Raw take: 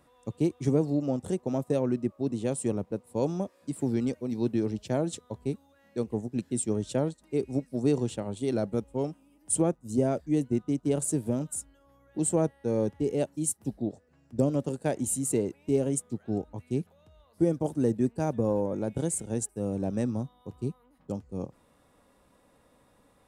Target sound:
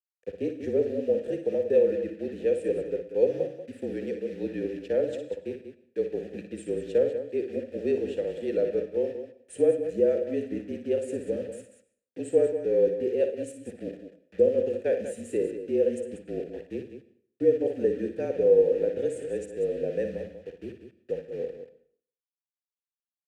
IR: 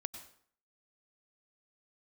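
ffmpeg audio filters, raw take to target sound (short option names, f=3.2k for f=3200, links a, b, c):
-filter_complex "[0:a]acrusher=bits=7:mix=0:aa=0.000001,asplit=3[a][b][c];[a]bandpass=f=530:t=q:w=8,volume=0dB[d];[b]bandpass=f=1.84k:t=q:w=8,volume=-6dB[e];[c]bandpass=f=2.48k:t=q:w=8,volume=-9dB[f];[d][e][f]amix=inputs=3:normalize=0,aecho=1:1:58.31|189.5:0.398|0.316,asplit=2[g][h];[1:a]atrim=start_sample=2205[i];[h][i]afir=irnorm=-1:irlink=0,volume=1dB[j];[g][j]amix=inputs=2:normalize=0,afreqshift=-39,volume=5.5dB"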